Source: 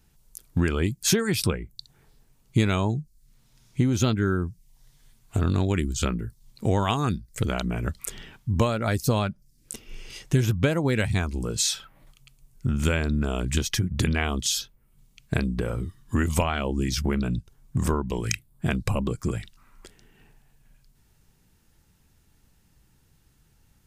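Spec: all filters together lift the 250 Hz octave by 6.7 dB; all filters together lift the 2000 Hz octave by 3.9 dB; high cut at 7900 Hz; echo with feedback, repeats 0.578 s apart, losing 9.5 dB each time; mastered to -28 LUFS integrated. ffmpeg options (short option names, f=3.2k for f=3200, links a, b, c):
-af "lowpass=7.9k,equalizer=f=250:t=o:g=8.5,equalizer=f=2k:t=o:g=5,aecho=1:1:578|1156|1734|2312:0.335|0.111|0.0365|0.012,volume=-5dB"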